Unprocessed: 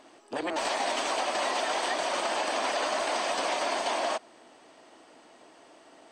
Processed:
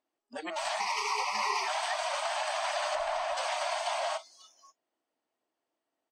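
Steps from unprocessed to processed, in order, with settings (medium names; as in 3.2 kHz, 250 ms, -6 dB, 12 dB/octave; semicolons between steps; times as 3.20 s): 0.80–1.68 s: rippled EQ curve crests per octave 0.84, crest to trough 13 dB; multi-tap echo 299/546 ms -16/-12.5 dB; spectral noise reduction 29 dB; 2.95–3.37 s: tilt EQ -3 dB/octave; trim -3 dB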